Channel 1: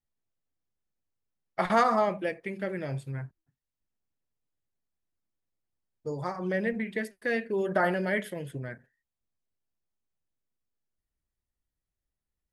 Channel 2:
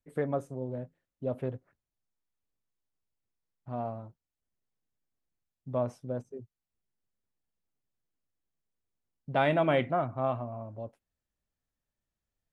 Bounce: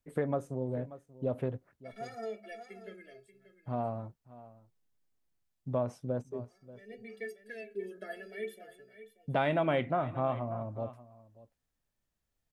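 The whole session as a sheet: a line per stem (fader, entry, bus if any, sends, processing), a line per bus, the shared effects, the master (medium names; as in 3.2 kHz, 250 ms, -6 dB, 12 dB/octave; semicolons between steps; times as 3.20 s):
+1.5 dB, 0.25 s, no send, echo send -13.5 dB, static phaser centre 410 Hz, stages 4; inharmonic resonator 200 Hz, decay 0.25 s, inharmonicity 0.03; vibrato 0.63 Hz 75 cents; auto duck -18 dB, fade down 0.65 s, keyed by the second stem
+3.0 dB, 0.00 s, no send, echo send -20 dB, none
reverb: none
echo: delay 584 ms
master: compression 2:1, threshold -30 dBFS, peak gain reduction 7 dB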